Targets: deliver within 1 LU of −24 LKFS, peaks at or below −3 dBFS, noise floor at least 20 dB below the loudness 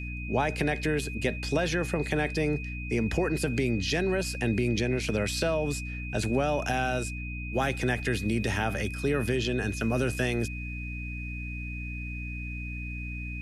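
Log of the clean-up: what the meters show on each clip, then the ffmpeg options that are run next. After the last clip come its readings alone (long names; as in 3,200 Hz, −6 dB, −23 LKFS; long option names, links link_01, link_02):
mains hum 60 Hz; hum harmonics up to 300 Hz; level of the hum −34 dBFS; interfering tone 2,500 Hz; level of the tone −39 dBFS; integrated loudness −29.5 LKFS; sample peak −13.0 dBFS; target loudness −24.0 LKFS
→ -af "bandreject=frequency=60:width_type=h:width=4,bandreject=frequency=120:width_type=h:width=4,bandreject=frequency=180:width_type=h:width=4,bandreject=frequency=240:width_type=h:width=4,bandreject=frequency=300:width_type=h:width=4"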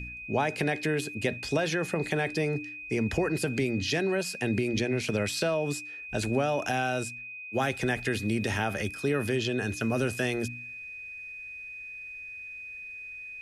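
mains hum none found; interfering tone 2,500 Hz; level of the tone −39 dBFS
→ -af "bandreject=frequency=2500:width=30"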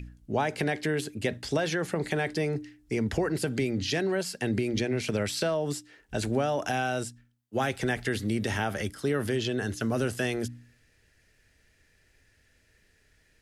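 interfering tone none found; integrated loudness −30.0 LKFS; sample peak −14.0 dBFS; target loudness −24.0 LKFS
→ -af "volume=6dB"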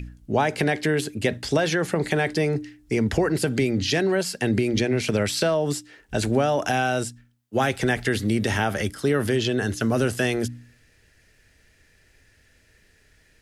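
integrated loudness −24.0 LKFS; sample peak −8.0 dBFS; background noise floor −60 dBFS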